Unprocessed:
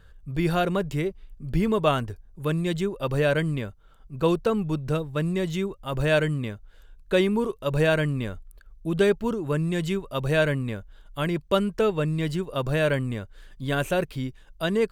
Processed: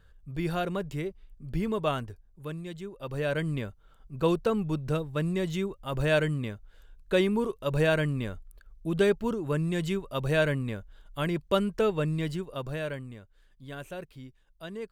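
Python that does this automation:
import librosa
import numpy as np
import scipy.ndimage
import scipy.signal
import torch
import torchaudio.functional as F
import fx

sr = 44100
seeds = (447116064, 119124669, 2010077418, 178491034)

y = fx.gain(x, sr, db=fx.line((1.98, -6.5), (2.78, -14.0), (3.57, -3.0), (12.14, -3.0), (13.22, -15.0)))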